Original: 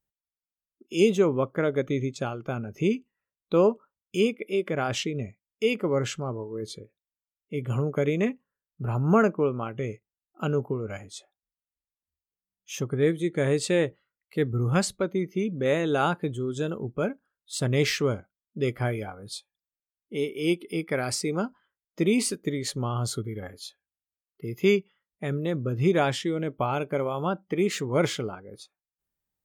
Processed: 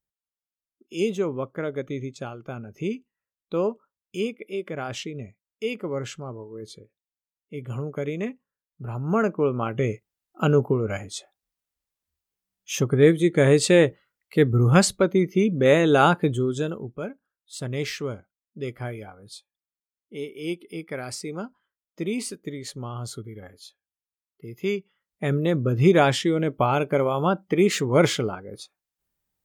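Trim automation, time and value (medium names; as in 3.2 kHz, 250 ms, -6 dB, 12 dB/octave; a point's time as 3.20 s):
9.06 s -4 dB
9.74 s +7 dB
16.39 s +7 dB
17.00 s -5 dB
24.76 s -5 dB
25.26 s +5.5 dB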